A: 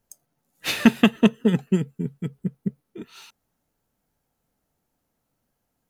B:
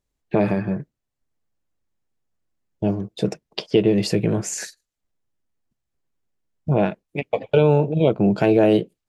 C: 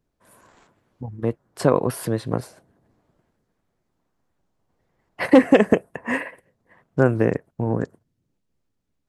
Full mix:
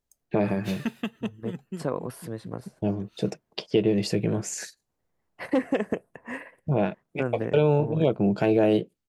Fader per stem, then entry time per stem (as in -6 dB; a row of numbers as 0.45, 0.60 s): -15.0, -5.0, -11.5 dB; 0.00, 0.00, 0.20 s